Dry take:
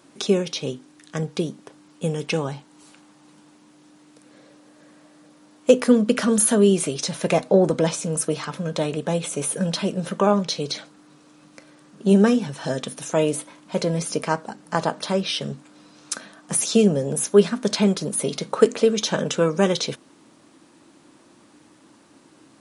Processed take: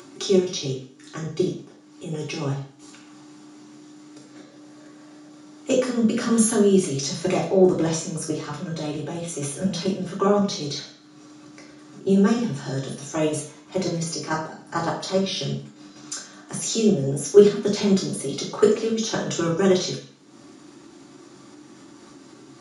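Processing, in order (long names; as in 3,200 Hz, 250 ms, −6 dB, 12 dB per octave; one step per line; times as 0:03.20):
output level in coarse steps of 10 dB
convolution reverb RT60 0.50 s, pre-delay 3 ms, DRR −3.5 dB
upward compression, threshold −27 dBFS
level −8.5 dB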